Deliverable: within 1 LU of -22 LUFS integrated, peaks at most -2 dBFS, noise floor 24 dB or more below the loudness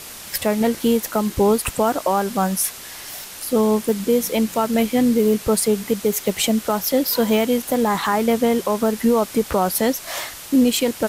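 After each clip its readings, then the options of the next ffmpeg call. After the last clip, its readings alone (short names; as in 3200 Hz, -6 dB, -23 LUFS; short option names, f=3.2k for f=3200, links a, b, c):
noise floor -37 dBFS; noise floor target -44 dBFS; loudness -19.5 LUFS; peak -7.5 dBFS; loudness target -22.0 LUFS
-> -af "afftdn=nr=7:nf=-37"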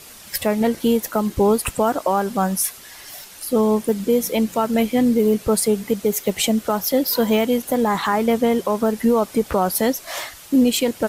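noise floor -42 dBFS; noise floor target -44 dBFS
-> -af "afftdn=nr=6:nf=-42"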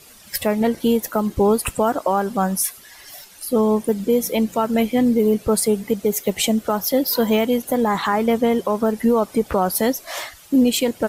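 noise floor -46 dBFS; loudness -19.5 LUFS; peak -8.0 dBFS; loudness target -22.0 LUFS
-> -af "volume=-2.5dB"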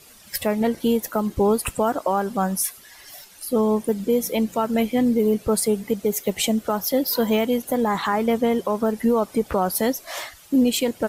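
loudness -22.0 LUFS; peak -10.5 dBFS; noise floor -48 dBFS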